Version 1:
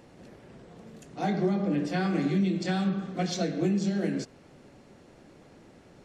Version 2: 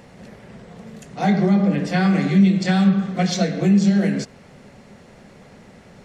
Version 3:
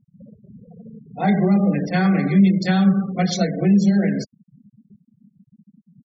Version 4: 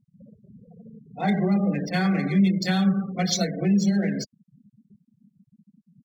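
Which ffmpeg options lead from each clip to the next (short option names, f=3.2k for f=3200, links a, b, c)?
-af "equalizer=f=200:t=o:w=0.33:g=5,equalizer=f=315:t=o:w=0.33:g=-12,equalizer=f=2k:t=o:w=0.33:g=4,volume=8.5dB"
-af "afftfilt=real='re*gte(hypot(re,im),0.0398)':imag='im*gte(hypot(re,im),0.0398)':win_size=1024:overlap=0.75"
-af "aemphasis=mode=production:type=75fm,adynamicsmooth=sensitivity=4.5:basefreq=6k,volume=-4.5dB"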